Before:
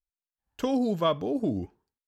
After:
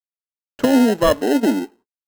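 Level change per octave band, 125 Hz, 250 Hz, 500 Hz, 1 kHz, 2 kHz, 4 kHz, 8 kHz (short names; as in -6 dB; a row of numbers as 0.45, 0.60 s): +3.0 dB, +12.0 dB, +10.5 dB, +8.5 dB, +19.0 dB, +10.0 dB, n/a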